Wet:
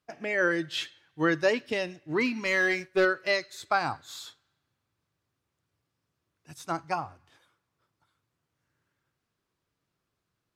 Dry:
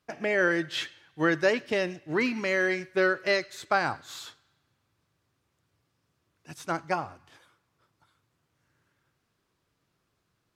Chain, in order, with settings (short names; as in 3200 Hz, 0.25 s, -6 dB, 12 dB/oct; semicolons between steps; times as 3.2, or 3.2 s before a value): spectral noise reduction 6 dB; 2.45–3.05 sample leveller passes 1